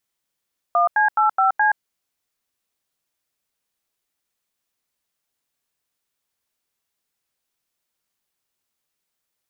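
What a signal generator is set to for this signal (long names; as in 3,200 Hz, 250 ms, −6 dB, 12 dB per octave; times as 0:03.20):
touch tones "1C85C", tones 124 ms, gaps 87 ms, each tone −16.5 dBFS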